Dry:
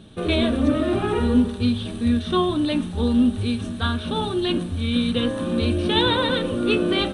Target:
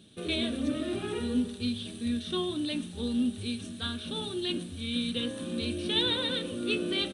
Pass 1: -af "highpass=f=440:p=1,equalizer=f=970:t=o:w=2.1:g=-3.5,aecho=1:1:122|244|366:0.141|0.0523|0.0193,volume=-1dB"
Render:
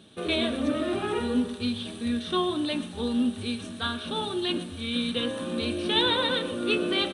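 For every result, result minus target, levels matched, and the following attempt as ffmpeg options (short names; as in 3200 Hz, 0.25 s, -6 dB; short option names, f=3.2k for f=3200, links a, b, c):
1000 Hz band +7.5 dB; echo-to-direct +10 dB
-af "highpass=f=440:p=1,equalizer=f=970:t=o:w=2.1:g=-15.5,aecho=1:1:122|244|366:0.141|0.0523|0.0193,volume=-1dB"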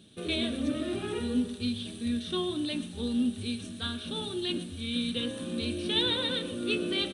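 echo-to-direct +10 dB
-af "highpass=f=440:p=1,equalizer=f=970:t=o:w=2.1:g=-15.5,aecho=1:1:122|244:0.0447|0.0165,volume=-1dB"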